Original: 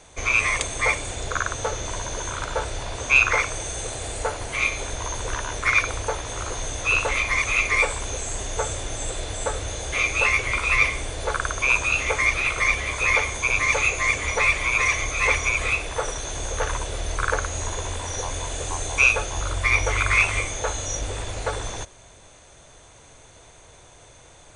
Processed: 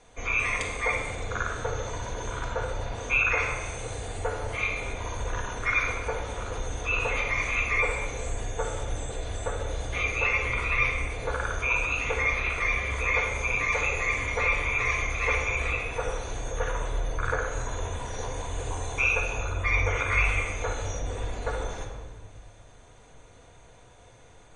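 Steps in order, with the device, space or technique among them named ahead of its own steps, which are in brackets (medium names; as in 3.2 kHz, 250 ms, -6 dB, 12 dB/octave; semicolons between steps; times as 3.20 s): spectral gate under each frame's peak -30 dB strong; behind a face mask (treble shelf 3.5 kHz -7.5 dB); simulated room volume 1500 m³, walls mixed, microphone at 1.8 m; trim -6.5 dB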